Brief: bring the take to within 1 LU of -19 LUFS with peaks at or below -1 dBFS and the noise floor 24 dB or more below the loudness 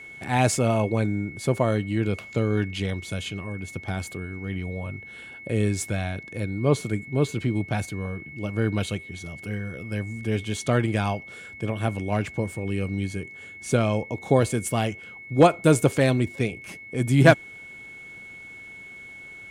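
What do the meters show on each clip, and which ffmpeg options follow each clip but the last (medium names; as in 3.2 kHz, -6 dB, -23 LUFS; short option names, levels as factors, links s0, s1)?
steady tone 2.2 kHz; tone level -40 dBFS; loudness -25.5 LUFS; peak level -4.0 dBFS; loudness target -19.0 LUFS
-> -af "bandreject=f=2200:w=30"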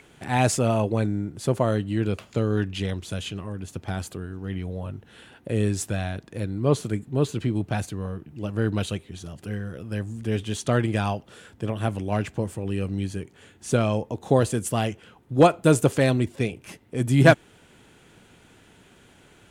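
steady tone not found; loudness -25.5 LUFS; peak level -4.0 dBFS; loudness target -19.0 LUFS
-> -af "volume=2.11,alimiter=limit=0.891:level=0:latency=1"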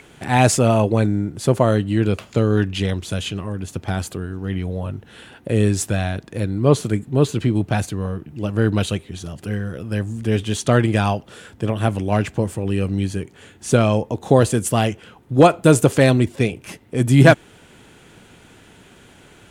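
loudness -19.5 LUFS; peak level -1.0 dBFS; noise floor -49 dBFS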